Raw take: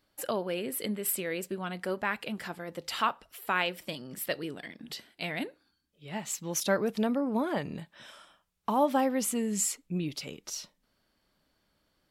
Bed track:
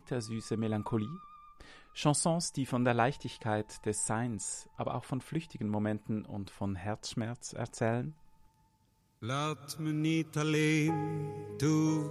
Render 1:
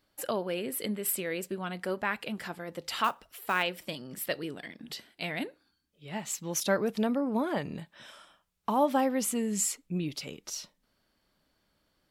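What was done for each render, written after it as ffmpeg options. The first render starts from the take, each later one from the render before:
-filter_complex "[0:a]asettb=1/sr,asplit=3[s0][s1][s2];[s0]atrim=end=3.044[s3];[s1]atrim=start=3.04:end=3.63,asetpts=PTS-STARTPTS,afade=t=in:d=0.004:c=qsin,afade=t=out:st=0.586:d=0.004:c=qsin,acrusher=bits=5:mode=log:mix=0:aa=0.000001[s4];[s2]atrim=start=3.626[s5];[s3][s4]acrossfade=d=0.004:c1=hsin:c2=qsin[s6];[s6][s5]acrossfade=d=0.004:c1=qsin:c2=hsin"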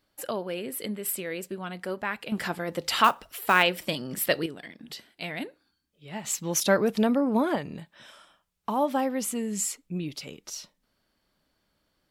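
-filter_complex "[0:a]asettb=1/sr,asplit=3[s0][s1][s2];[s0]atrim=end=6.244[s3];[s1]atrim=start=6.24:end=7.56,asetpts=PTS-STARTPTS,afade=t=in:d=0.004:c=qsin,afade=t=out:st=1.316:d=0.004:c=qsin,acontrast=33[s4];[s2]atrim=start=7.556[s5];[s3][s4]acrossfade=d=0.004:c1=hsin:c2=qsin[s6];[s6][s5]acrossfade=d=0.004:c1=qsin:c2=hsin,asplit=3[s7][s8][s9];[s7]atrim=end=2.322[s10];[s8]atrim=start=2.318:end=4.462,asetpts=PTS-STARTPTS,volume=2.51[s11];[s9]atrim=start=4.458[s12];[s10][s11]acrossfade=d=0.004:c1=hsin:c2=hsin[s13];[s13][s12]acrossfade=d=0.004:c1=hsin:c2=hsin"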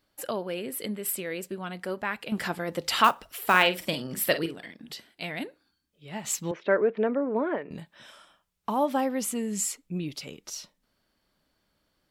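-filter_complex "[0:a]asettb=1/sr,asplit=3[s0][s1][s2];[s0]atrim=end=3.284[s3];[s1]atrim=start=3.28:end=4.72,asetpts=PTS-STARTPTS,afade=t=in:d=0.004:c=qsin,afade=t=out:st=1.436:d=0.004:c=qsin,asplit=2[s4][s5];[s5]adelay=48,volume=0.282[s6];[s4][s6]amix=inputs=2:normalize=0,atrim=end_sample=63504[s7];[s2]atrim=start=4.716[s8];[s3][s7]acrossfade=d=0.004:c1=hsin:c2=qsin[s9];[s9][s8]acrossfade=d=0.004:c1=qsin:c2=hsin,asettb=1/sr,asplit=3[s10][s11][s12];[s10]atrim=end=6.514[s13];[s11]atrim=start=6.51:end=7.71,asetpts=PTS-STARTPTS,afade=t=in:d=0.004:c=qsin,afade=t=out:st=1.196:d=0.004:c=qsin,highpass=340,equalizer=f=430:t=q:w=4:g=5,equalizer=f=800:t=q:w=4:g=-7,equalizer=f=1200:t=q:w=4:g=-4,lowpass=f=2200:w=0.5412,lowpass=f=2200:w=1.3066[s14];[s12]atrim=start=7.706[s15];[s13][s14]acrossfade=d=0.004:c1=hsin:c2=qsin[s16];[s16][s15]acrossfade=d=0.004:c1=qsin:c2=hsin"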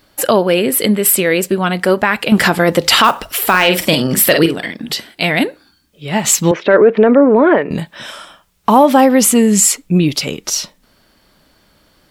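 -af "acontrast=87,alimiter=level_in=4.47:limit=0.891:release=50:level=0:latency=1"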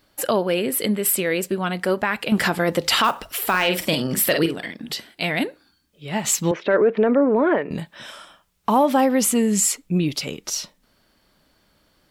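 -af "volume=0.376"

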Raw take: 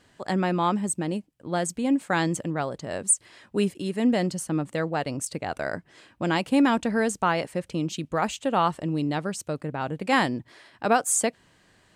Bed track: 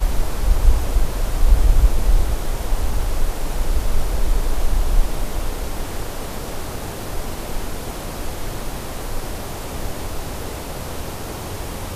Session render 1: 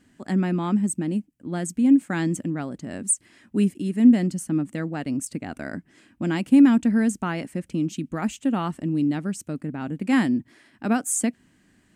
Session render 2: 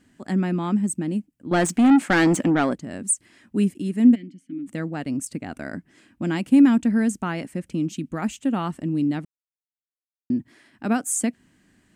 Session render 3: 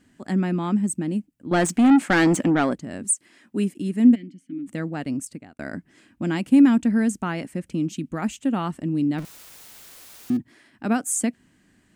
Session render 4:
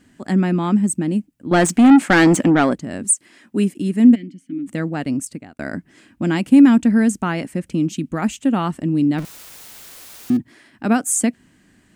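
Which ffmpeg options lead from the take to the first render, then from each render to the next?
-af "equalizer=f=125:t=o:w=1:g=-3,equalizer=f=250:t=o:w=1:g=11,equalizer=f=500:t=o:w=1:g=-9,equalizer=f=1000:t=o:w=1:g=-7,equalizer=f=4000:t=o:w=1:g=-8"
-filter_complex "[0:a]asettb=1/sr,asplit=3[s0][s1][s2];[s0]atrim=end=1.514[s3];[s1]atrim=start=1.51:end=2.74,asetpts=PTS-STARTPTS,afade=t=in:d=0.004:c=qsin,afade=t=out:st=1.226:d=0.004:c=qsin,asplit=2[s4][s5];[s5]highpass=f=720:p=1,volume=17.8,asoftclip=type=tanh:threshold=0.376[s6];[s4][s6]amix=inputs=2:normalize=0,lowpass=f=2800:p=1,volume=0.501[s7];[s2]atrim=start=2.736[s8];[s3][s7]acrossfade=d=0.004:c1=hsin:c2=qsin[s9];[s9][s8]acrossfade=d=0.004:c1=qsin:c2=hsin,asplit=3[s10][s11][s12];[s10]afade=t=out:st=4.14:d=0.02[s13];[s11]asplit=3[s14][s15][s16];[s14]bandpass=f=270:t=q:w=8,volume=1[s17];[s15]bandpass=f=2290:t=q:w=8,volume=0.501[s18];[s16]bandpass=f=3010:t=q:w=8,volume=0.355[s19];[s17][s18][s19]amix=inputs=3:normalize=0,afade=t=in:st=4.14:d=0.02,afade=t=out:st=4.66:d=0.02[s20];[s12]afade=t=in:st=4.66:d=0.02[s21];[s13][s20][s21]amix=inputs=3:normalize=0,asplit=3[s22][s23][s24];[s22]atrim=end=9.25,asetpts=PTS-STARTPTS,afade=t=out:st=9.246:d=0.004:c=hsin[s25];[s23]atrim=start=9.25:end=10.3,asetpts=PTS-STARTPTS,volume=0[s26];[s24]atrim=start=10.3,asetpts=PTS-STARTPTS,afade=t=in:d=0.004:c=hsin[s27];[s25][s26][s27]concat=n=3:v=0:a=1"
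-filter_complex "[0:a]asettb=1/sr,asplit=3[s0][s1][s2];[s0]atrim=end=3.044[s3];[s1]atrim=start=3.04:end=3.77,asetpts=PTS-STARTPTS,afade=t=in:d=0.004:c=qsin,afade=t=out:st=0.726:d=0.004:c=qsin,highpass=210[s4];[s2]atrim=start=3.766[s5];[s3][s4]acrossfade=d=0.004:c1=hsin:c2=qsin[s6];[s6][s5]acrossfade=d=0.004:c1=qsin:c2=hsin,asettb=1/sr,asplit=3[s7][s8][s9];[s7]atrim=end=9.184[s10];[s8]atrim=start=9.18:end=10.37,asetpts=PTS-STARTPTS,afade=t=in:d=0.004:c=qsin,afade=t=out:st=1.186:d=0.004:c=qsin,aeval=exprs='val(0)+0.5*0.02*sgn(val(0))':c=same[s11];[s9]atrim=start=10.366[s12];[s10][s11]acrossfade=d=0.004:c1=hsin:c2=qsin[s13];[s13][s12]acrossfade=d=0.004:c1=qsin:c2=hsin,asplit=2[s14][s15];[s14]atrim=end=5.59,asetpts=PTS-STARTPTS,afade=t=out:st=5.11:d=0.48[s16];[s15]atrim=start=5.59,asetpts=PTS-STARTPTS,afade=t=in:d=0.004:c=hsin[s17];[s16][s17]concat=n=2:v=0:a=1"
-af "volume=1.88,alimiter=limit=0.708:level=0:latency=1"

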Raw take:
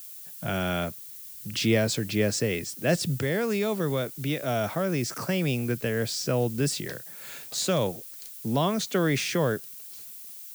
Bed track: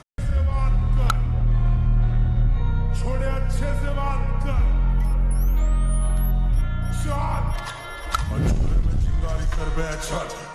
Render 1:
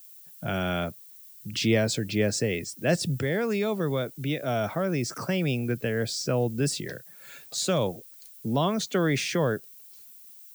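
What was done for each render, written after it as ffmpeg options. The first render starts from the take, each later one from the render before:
-af "afftdn=nr=9:nf=-43"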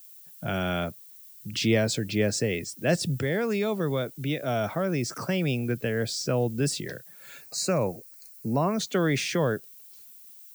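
-filter_complex "[0:a]asettb=1/sr,asplit=3[s0][s1][s2];[s0]atrim=end=7.414[s3];[s1]atrim=start=7.41:end=8.78,asetpts=PTS-STARTPTS,afade=t=in:d=0.004:c=qsin,afade=t=out:st=1.366:d=0.004:c=qsin,asuperstop=centerf=3300:order=8:qfactor=2.5[s4];[s2]atrim=start=8.776[s5];[s3][s4]acrossfade=d=0.004:c1=hsin:c2=qsin[s6];[s6][s5]acrossfade=d=0.004:c1=qsin:c2=hsin"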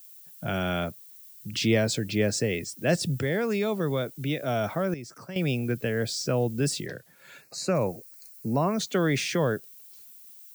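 -filter_complex "[0:a]asettb=1/sr,asplit=3[s0][s1][s2];[s0]atrim=end=6.864[s3];[s1]atrim=start=6.86:end=7.75,asetpts=PTS-STARTPTS,afade=t=in:d=0.004:c=qsin,afade=t=out:st=0.886:d=0.004:c=qsin,aemphasis=mode=reproduction:type=cd[s4];[s2]atrim=start=7.746[s5];[s3][s4]acrossfade=d=0.004:c1=hsin:c2=qsin[s6];[s6][s5]acrossfade=d=0.004:c1=qsin:c2=hsin,asplit=3[s7][s8][s9];[s7]atrim=end=4.942[s10];[s8]atrim=start=4.938:end=5.362,asetpts=PTS-STARTPTS,volume=0.266[s11];[s9]atrim=start=5.358[s12];[s10][s11]acrossfade=d=0.004:c1=hsin:c2=hsin[s13];[s13][s12]acrossfade=d=0.004:c1=hsin:c2=hsin"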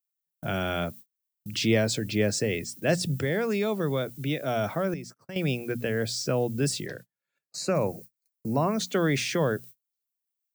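-af "bandreject=f=60:t=h:w=6,bandreject=f=120:t=h:w=6,bandreject=f=180:t=h:w=6,bandreject=f=240:t=h:w=6,agate=range=0.0141:threshold=0.00708:ratio=16:detection=peak"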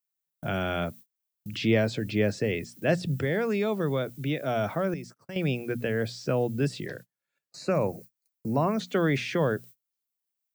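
-filter_complex "[0:a]acrossover=split=3600[s0][s1];[s1]acompressor=threshold=0.00398:ratio=4:attack=1:release=60[s2];[s0][s2]amix=inputs=2:normalize=0"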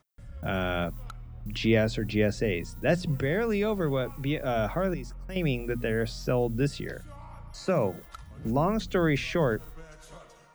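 -filter_complex "[1:a]volume=0.0841[s0];[0:a][s0]amix=inputs=2:normalize=0"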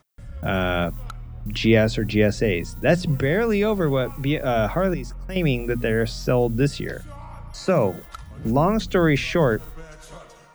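-af "volume=2.11"

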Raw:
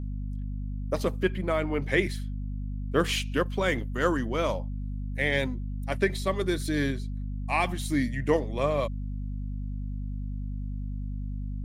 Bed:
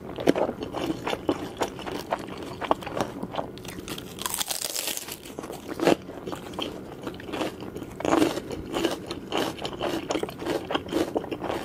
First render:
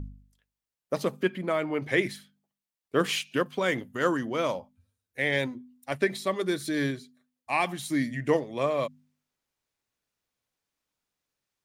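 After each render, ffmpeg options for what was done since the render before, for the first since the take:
-af "bandreject=f=50:t=h:w=4,bandreject=f=100:t=h:w=4,bandreject=f=150:t=h:w=4,bandreject=f=200:t=h:w=4,bandreject=f=250:t=h:w=4"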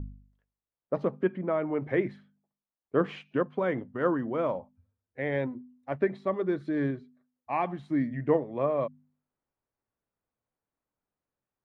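-af "lowpass=1200"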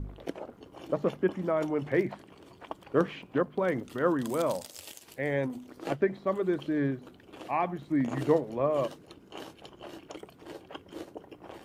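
-filter_complex "[1:a]volume=0.15[s0];[0:a][s0]amix=inputs=2:normalize=0"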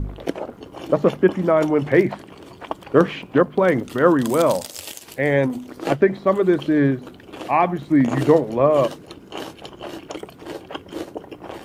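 -af "volume=3.76,alimiter=limit=0.708:level=0:latency=1"

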